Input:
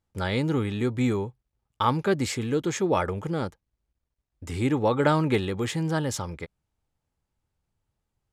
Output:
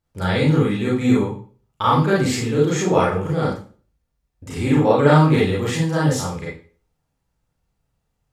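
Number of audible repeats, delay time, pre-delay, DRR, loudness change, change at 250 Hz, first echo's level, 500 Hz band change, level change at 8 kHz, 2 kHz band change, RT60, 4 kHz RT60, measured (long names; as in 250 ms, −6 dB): no echo audible, no echo audible, 31 ms, −6.5 dB, +7.5 dB, +8.0 dB, no echo audible, +7.5 dB, +6.0 dB, +7.0 dB, 0.40 s, 0.35 s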